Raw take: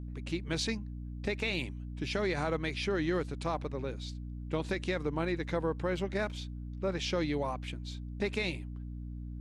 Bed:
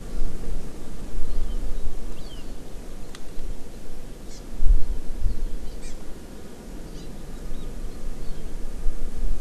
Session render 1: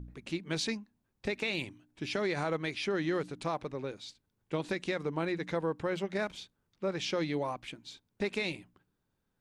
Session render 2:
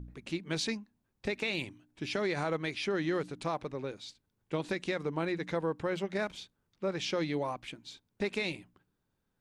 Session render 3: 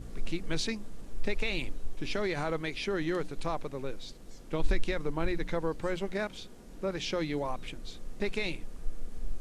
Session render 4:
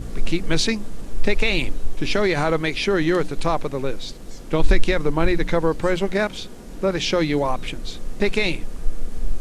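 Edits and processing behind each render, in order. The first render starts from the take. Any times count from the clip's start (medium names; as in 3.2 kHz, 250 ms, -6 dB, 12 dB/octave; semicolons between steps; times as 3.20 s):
de-hum 60 Hz, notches 5
no audible change
add bed -11.5 dB
trim +12 dB; peak limiter -3 dBFS, peak gain reduction 2 dB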